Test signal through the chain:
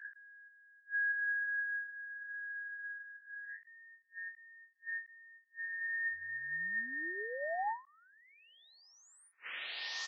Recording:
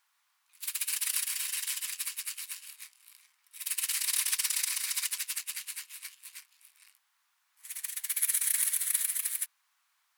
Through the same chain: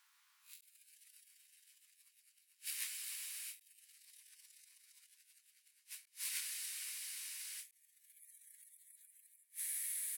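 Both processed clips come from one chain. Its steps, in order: reverse spectral sustain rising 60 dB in 0.31 s; high-pass 1.1 kHz 12 dB/octave; spectral gate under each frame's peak -20 dB strong; doubling 12 ms -13 dB; echo that smears into a reverb 1267 ms, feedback 60%, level -15.5 dB; inverted gate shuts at -27 dBFS, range -36 dB; endings held to a fixed fall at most 210 dB/s; trim +1.5 dB

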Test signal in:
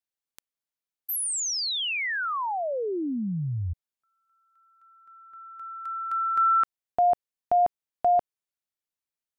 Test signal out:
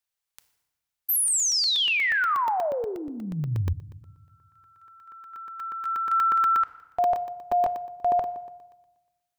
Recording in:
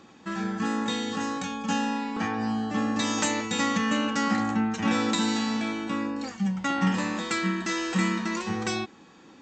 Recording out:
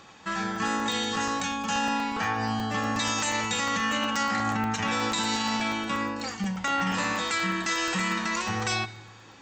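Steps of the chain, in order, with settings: peaking EQ 270 Hz -13.5 dB 1.4 oct; FDN reverb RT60 1.1 s, low-frequency decay 1.5×, high-frequency decay 0.8×, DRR 13.5 dB; peak limiter -24 dBFS; crackling interface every 0.12 s, samples 64, zero, from 0.56 s; trim +6 dB

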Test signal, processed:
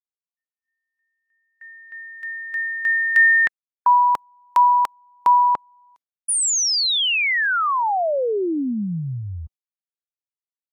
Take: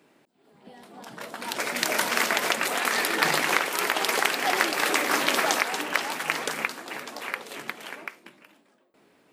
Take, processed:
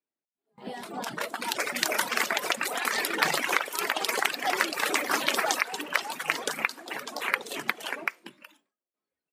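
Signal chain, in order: spectral noise reduction 11 dB; gate with hold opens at -51 dBFS; high-pass 140 Hz 6 dB/octave; level rider gain up to 16 dB; reverb removal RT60 1.4 s; trim -4 dB

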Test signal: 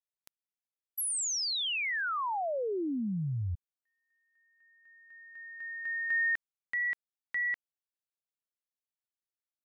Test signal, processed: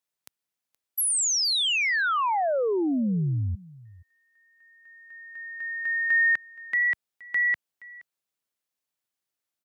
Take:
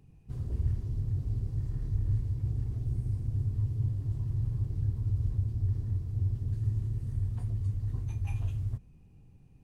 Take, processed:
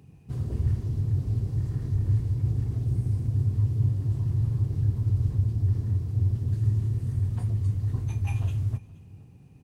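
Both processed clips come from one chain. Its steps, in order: high-pass 88 Hz 12 dB/octave; on a send: delay 472 ms -21.5 dB; on the sum: trim +8 dB

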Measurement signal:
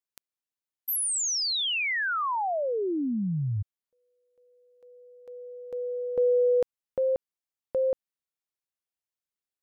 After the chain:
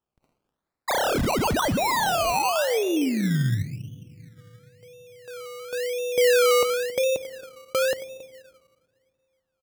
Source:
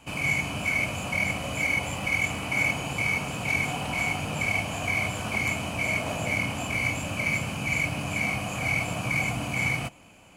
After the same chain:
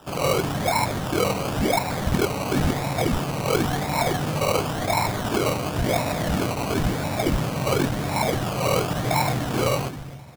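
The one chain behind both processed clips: high-pass 62 Hz 12 dB/octave; on a send: delay 273 ms -16 dB; on the sum: simulated room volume 2100 m³, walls mixed, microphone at 0.47 m; decimation with a swept rate 20×, swing 60% 0.95 Hz; trim +4.5 dB

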